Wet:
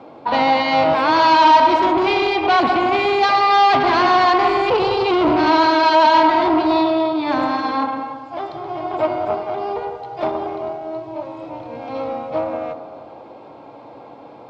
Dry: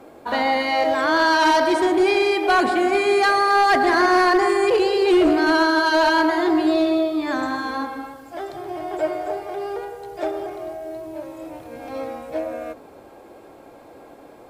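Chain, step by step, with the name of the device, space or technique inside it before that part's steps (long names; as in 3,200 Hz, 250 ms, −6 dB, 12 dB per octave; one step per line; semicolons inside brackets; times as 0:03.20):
analogue delay pedal into a guitar amplifier (bucket-brigade delay 97 ms, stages 1,024, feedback 72%, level −11 dB; tube saturation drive 18 dB, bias 0.65; loudspeaker in its box 100–4,600 Hz, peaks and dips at 130 Hz +6 dB, 380 Hz −5 dB, 930 Hz +6 dB, 1,700 Hz −8 dB)
level +7.5 dB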